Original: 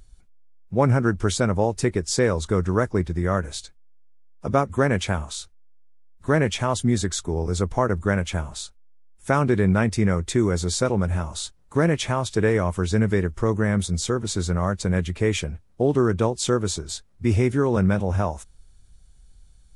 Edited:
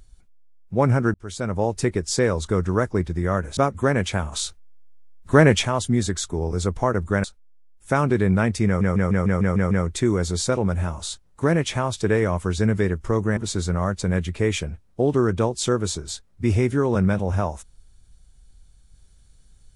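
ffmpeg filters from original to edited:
-filter_complex "[0:a]asplit=14[s0][s1][s2][s3][s4][s5][s6][s7][s8][s9][s10][s11][s12][s13];[s0]atrim=end=1.14,asetpts=PTS-STARTPTS,afade=t=out:st=1.136:d=0.004:c=hsin[s14];[s1]atrim=start=1.14:end=3.572,asetpts=PTS-STARTPTS,afade=t=in:d=0.56[s15];[s2]atrim=start=4.518:end=5.272[s16];[s3]atrim=start=5.268:end=6.602,asetpts=PTS-STARTPTS,volume=2[s17];[s4]atrim=start=6.598:end=8.192[s18];[s5]atrim=start=8.618:end=10.192[s19];[s6]atrim=start=10.038:end=10.192[s20];[s7]atrim=start=10.038:end=10.192[s21];[s8]atrim=start=10.038:end=10.192[s22];[s9]atrim=start=10.038:end=10.192[s23];[s10]atrim=start=10.038:end=10.192[s24];[s11]atrim=start=10.038:end=10.192[s25];[s12]atrim=start=10.038:end=13.702[s26];[s13]atrim=start=14.178[s27];[s14][s15]concat=n=2:v=0:a=1[s28];[s28][s16]acrossfade=d=0.004:c1=hsin:c2=hsin[s29];[s29][s17]acrossfade=d=0.004:c1=hsin:c2=hsin[s30];[s30][s18]acrossfade=d=0.004:c1=hsin:c2=hsin[s31];[s31][s19]acrossfade=d=0.004:c1=hsin:c2=hsin[s32];[s32][s20]acrossfade=d=0.004:c1=hsin:c2=hsin[s33];[s33][s21]acrossfade=d=0.004:c1=hsin:c2=hsin[s34];[s34][s22]acrossfade=d=0.004:c1=hsin:c2=hsin[s35];[s35][s23]acrossfade=d=0.004:c1=hsin:c2=hsin[s36];[s36][s24]acrossfade=d=0.004:c1=hsin:c2=hsin[s37];[s37][s25]acrossfade=d=0.004:c1=hsin:c2=hsin[s38];[s38][s26]acrossfade=d=0.004:c1=hsin:c2=hsin[s39];[s39][s27]acrossfade=d=0.004:c1=hsin:c2=hsin"

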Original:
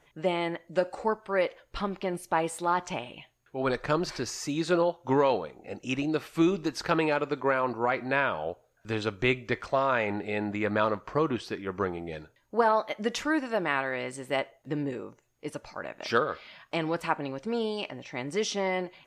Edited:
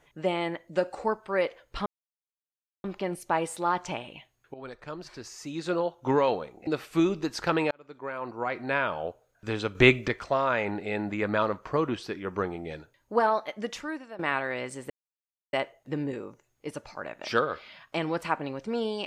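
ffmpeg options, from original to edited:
-filter_complex "[0:a]asplit=9[s0][s1][s2][s3][s4][s5][s6][s7][s8];[s0]atrim=end=1.86,asetpts=PTS-STARTPTS,afade=t=out:st=1.856:d=0.004:c=hsin,apad=pad_dur=0.98[s9];[s1]atrim=start=1.86:end=3.56,asetpts=PTS-STARTPTS,afade=t=in:d=0.004:c=hsin,afade=t=out:st=1.696:d=0.004:c=hsin:silence=0.199526[s10];[s2]atrim=start=3.56:end=5.692,asetpts=PTS-STARTPTS,afade=t=in:d=1.56:c=qua:silence=0.199526[s11];[s3]atrim=start=6.088:end=7.13,asetpts=PTS-STARTPTS,afade=t=out:st=1.038:d=0.004:c=hsin[s12];[s4]atrim=start=7.13:end=9.172,asetpts=PTS-STARTPTS,afade=t=in:d=1.17[s13];[s5]atrim=start=9.168:end=9.502,asetpts=PTS-STARTPTS,volume=2.37[s14];[s6]atrim=start=9.498:end=13.61,asetpts=PTS-STARTPTS,afade=t=out:st=3.152:d=0.96:silence=0.149624[s15];[s7]atrim=start=13.61:end=14.32,asetpts=PTS-STARTPTS,afade=t=in:d=0.004:c=hsin:silence=0.149624,afade=t=out:st=0.706:d=0.004:c=hsin,apad=pad_dur=0.63[s16];[s8]atrim=start=14.32,asetpts=PTS-STARTPTS,afade=t=in:d=0.004:c=hsin[s17];[s9][s10][s11]concat=n=3:v=0:a=1[s18];[s12][s13]concat=n=2:v=0:a=1[s19];[s18][s19]acrossfade=d=0.004:c1=hsin:c2=hsin[s20];[s20][s14]acrossfade=d=0.004:c1=hsin:c2=hsin[s21];[s15][s16][s17]concat=n=3:v=0:a=1[s22];[s21][s22]acrossfade=d=0.004:c1=hsin:c2=hsin"

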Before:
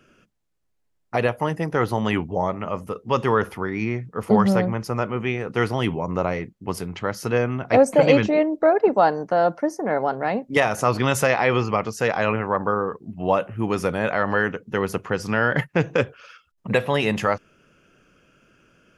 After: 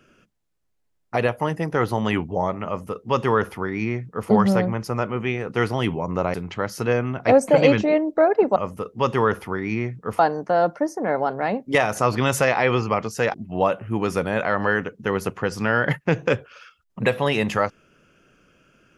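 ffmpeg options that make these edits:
-filter_complex "[0:a]asplit=5[s0][s1][s2][s3][s4];[s0]atrim=end=6.342[s5];[s1]atrim=start=6.788:end=9.012[s6];[s2]atrim=start=2.658:end=4.292[s7];[s3]atrim=start=9.008:end=12.162[s8];[s4]atrim=start=13.018[s9];[s5][s6]acrossfade=d=0.004:c1=hsin:c2=hsin[s10];[s10][s7]acrossfade=d=0.004:c1=hsin:c2=hsin[s11];[s11][s8]acrossfade=d=0.004:c1=hsin:c2=hsin[s12];[s12][s9]acrossfade=d=0.004:c1=hsin:c2=hsin"

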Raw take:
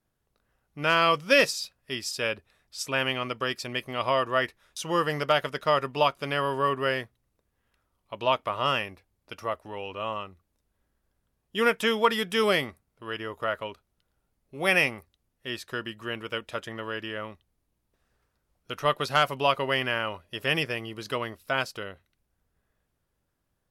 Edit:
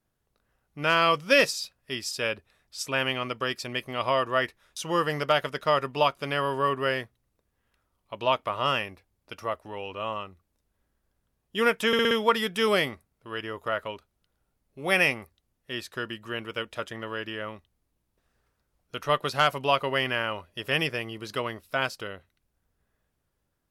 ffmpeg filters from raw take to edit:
-filter_complex "[0:a]asplit=5[s0][s1][s2][s3][s4];[s0]atrim=end=11.932[s5];[s1]atrim=start=11.868:end=11.932[s6];[s2]atrim=start=11.868:end=11.932[s7];[s3]atrim=start=11.868:end=11.932[s8];[s4]atrim=start=11.868[s9];[s5][s6]acrossfade=d=0.004:c1=hsin:c2=hsin[s10];[s10][s7]acrossfade=d=0.004:c1=hsin:c2=hsin[s11];[s11][s8]acrossfade=d=0.004:c1=hsin:c2=hsin[s12];[s12][s9]acrossfade=d=0.004:c1=hsin:c2=hsin"

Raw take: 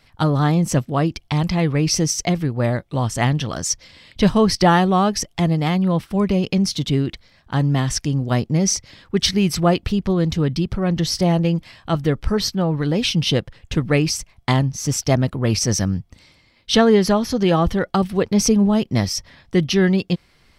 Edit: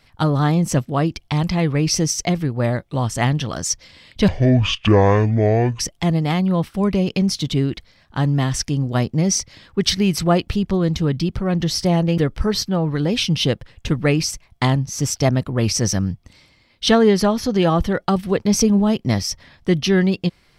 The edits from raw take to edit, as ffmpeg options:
-filter_complex "[0:a]asplit=4[s0][s1][s2][s3];[s0]atrim=end=4.284[s4];[s1]atrim=start=4.28:end=5.16,asetpts=PTS-STARTPTS,asetrate=25578,aresample=44100,atrim=end_sample=66910,asetpts=PTS-STARTPTS[s5];[s2]atrim=start=5.156:end=11.542[s6];[s3]atrim=start=12.038[s7];[s4][s5]acrossfade=d=0.004:c1=hsin:c2=hsin[s8];[s8][s6]acrossfade=d=0.004:c1=hsin:c2=hsin[s9];[s9][s7]acrossfade=d=0.004:c1=hsin:c2=hsin"

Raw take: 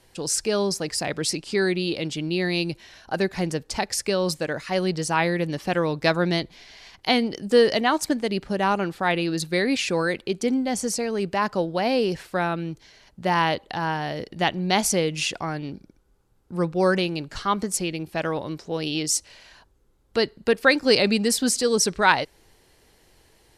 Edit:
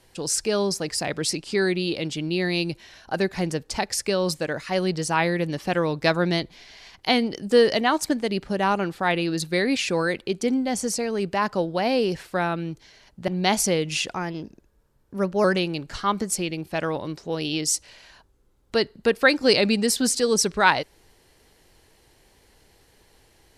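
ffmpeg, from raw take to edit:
-filter_complex "[0:a]asplit=4[s0][s1][s2][s3];[s0]atrim=end=13.282[s4];[s1]atrim=start=14.538:end=15.394[s5];[s2]atrim=start=15.39:end=16.86,asetpts=PTS-STARTPTS,asetrate=49392,aresample=44100,atrim=end_sample=57881,asetpts=PTS-STARTPTS[s6];[s3]atrim=start=16.856[s7];[s4][s5]acrossfade=d=0.004:c1=hsin:c2=hsin[s8];[s8][s6]acrossfade=d=0.004:c1=hsin:c2=hsin[s9];[s9][s7]acrossfade=d=0.004:c1=hsin:c2=hsin"

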